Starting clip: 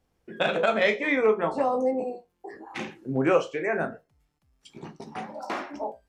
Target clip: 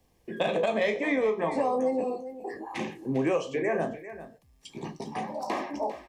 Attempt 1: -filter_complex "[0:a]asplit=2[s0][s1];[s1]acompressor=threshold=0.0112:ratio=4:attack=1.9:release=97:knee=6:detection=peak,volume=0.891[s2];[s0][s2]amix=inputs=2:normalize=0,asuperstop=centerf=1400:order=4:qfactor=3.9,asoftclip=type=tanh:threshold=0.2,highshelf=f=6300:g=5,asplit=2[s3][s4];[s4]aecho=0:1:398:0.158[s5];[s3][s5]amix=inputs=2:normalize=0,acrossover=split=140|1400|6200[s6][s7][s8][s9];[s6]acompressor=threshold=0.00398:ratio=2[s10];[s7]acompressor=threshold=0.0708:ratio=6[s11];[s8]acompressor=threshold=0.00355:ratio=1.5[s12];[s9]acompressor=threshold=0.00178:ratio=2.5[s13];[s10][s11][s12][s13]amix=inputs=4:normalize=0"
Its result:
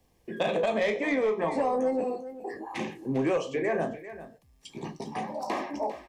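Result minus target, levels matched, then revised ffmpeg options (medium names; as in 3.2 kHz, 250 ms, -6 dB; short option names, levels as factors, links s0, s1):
saturation: distortion +15 dB
-filter_complex "[0:a]asplit=2[s0][s1];[s1]acompressor=threshold=0.0112:ratio=4:attack=1.9:release=97:knee=6:detection=peak,volume=0.891[s2];[s0][s2]amix=inputs=2:normalize=0,asuperstop=centerf=1400:order=4:qfactor=3.9,asoftclip=type=tanh:threshold=0.562,highshelf=f=6300:g=5,asplit=2[s3][s4];[s4]aecho=0:1:398:0.158[s5];[s3][s5]amix=inputs=2:normalize=0,acrossover=split=140|1400|6200[s6][s7][s8][s9];[s6]acompressor=threshold=0.00398:ratio=2[s10];[s7]acompressor=threshold=0.0708:ratio=6[s11];[s8]acompressor=threshold=0.00355:ratio=1.5[s12];[s9]acompressor=threshold=0.00178:ratio=2.5[s13];[s10][s11][s12][s13]amix=inputs=4:normalize=0"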